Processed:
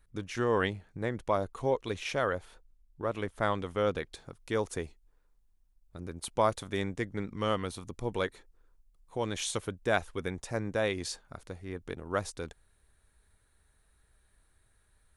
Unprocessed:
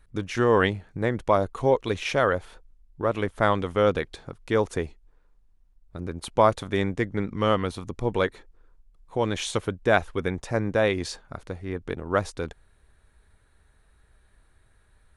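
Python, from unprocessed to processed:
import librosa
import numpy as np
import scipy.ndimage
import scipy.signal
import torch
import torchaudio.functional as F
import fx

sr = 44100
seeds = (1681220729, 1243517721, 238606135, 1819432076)

y = fx.high_shelf(x, sr, hz=5500.0, db=fx.steps((0.0, 5.5), (4.12, 11.5)))
y = y * 10.0 ** (-8.0 / 20.0)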